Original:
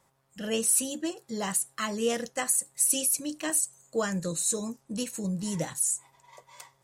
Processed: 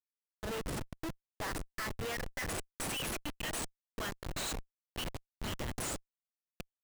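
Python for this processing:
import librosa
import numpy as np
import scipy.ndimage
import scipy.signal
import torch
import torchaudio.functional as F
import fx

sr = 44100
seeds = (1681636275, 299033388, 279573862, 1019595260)

y = fx.filter_sweep_bandpass(x, sr, from_hz=1100.0, to_hz=3100.0, start_s=0.17, end_s=3.8, q=2.8)
y = fx.schmitt(y, sr, flips_db=-44.5)
y = y * 10.0 ** (10.0 / 20.0)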